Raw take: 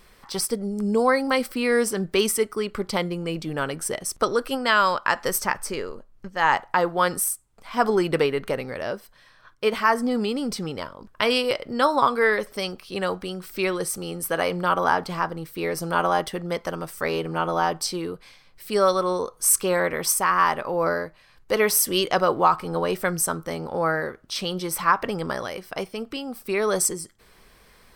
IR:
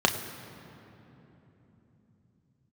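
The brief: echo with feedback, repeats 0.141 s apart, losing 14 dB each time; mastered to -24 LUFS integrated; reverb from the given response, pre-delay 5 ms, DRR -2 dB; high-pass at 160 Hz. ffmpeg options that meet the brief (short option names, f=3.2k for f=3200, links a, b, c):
-filter_complex "[0:a]highpass=160,aecho=1:1:141|282:0.2|0.0399,asplit=2[a][b];[1:a]atrim=start_sample=2205,adelay=5[c];[b][c]afir=irnorm=-1:irlink=0,volume=-12.5dB[d];[a][d]amix=inputs=2:normalize=0,volume=-4.5dB"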